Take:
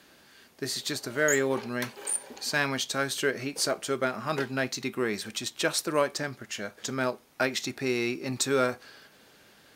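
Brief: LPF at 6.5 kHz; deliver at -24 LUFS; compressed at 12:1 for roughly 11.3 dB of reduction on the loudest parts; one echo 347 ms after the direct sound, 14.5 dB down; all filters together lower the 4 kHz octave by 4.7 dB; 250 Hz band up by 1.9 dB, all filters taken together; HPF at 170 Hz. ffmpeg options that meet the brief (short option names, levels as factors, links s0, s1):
-af "highpass=170,lowpass=6500,equalizer=f=250:t=o:g=3,equalizer=f=4000:t=o:g=-5,acompressor=threshold=0.0282:ratio=12,aecho=1:1:347:0.188,volume=4.47"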